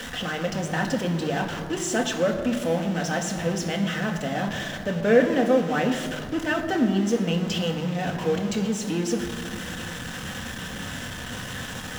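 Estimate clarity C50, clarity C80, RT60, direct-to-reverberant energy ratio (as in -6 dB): 8.0 dB, 9.0 dB, 2.0 s, 2.0 dB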